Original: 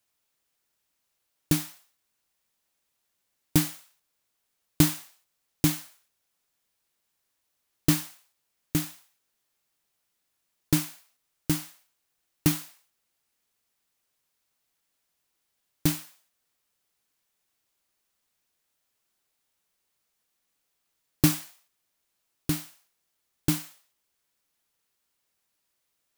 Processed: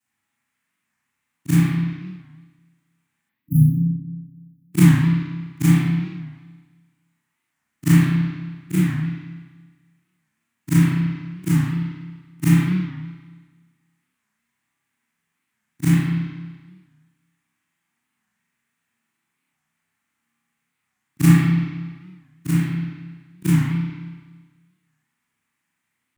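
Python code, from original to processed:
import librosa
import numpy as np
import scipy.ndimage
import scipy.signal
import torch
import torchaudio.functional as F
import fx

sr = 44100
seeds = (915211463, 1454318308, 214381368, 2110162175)

y = fx.frame_reverse(x, sr, frame_ms=85.0)
y = scipy.signal.sosfilt(scipy.signal.butter(2, 68.0, 'highpass', fs=sr, output='sos'), y)
y = fx.spec_erase(y, sr, start_s=3.29, length_s=1.44, low_hz=300.0, high_hz=11000.0)
y = fx.graphic_eq(y, sr, hz=(125, 250, 500, 1000, 2000, 4000, 8000), db=(12, 12, -10, 6, 11, -4, 8))
y = fx.rev_spring(y, sr, rt60_s=1.4, pass_ms=(30, 47), chirp_ms=25, drr_db=-7.0)
y = fx.record_warp(y, sr, rpm=45.0, depth_cents=160.0)
y = y * 10.0 ** (-4.5 / 20.0)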